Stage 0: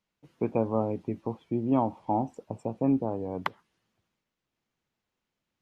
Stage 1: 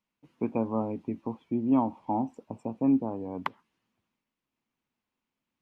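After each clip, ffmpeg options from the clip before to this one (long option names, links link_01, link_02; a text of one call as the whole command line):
ffmpeg -i in.wav -af "equalizer=frequency=250:width_type=o:width=0.67:gain=9,equalizer=frequency=1000:width_type=o:width=0.67:gain=6,equalizer=frequency=2500:width_type=o:width=0.67:gain=5,volume=-6dB" out.wav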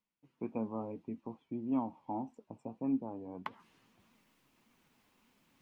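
ffmpeg -i in.wav -af "areverse,acompressor=mode=upward:threshold=-41dB:ratio=2.5,areverse,flanger=delay=3.9:depth=3.8:regen=69:speed=1.7:shape=triangular,volume=-5dB" out.wav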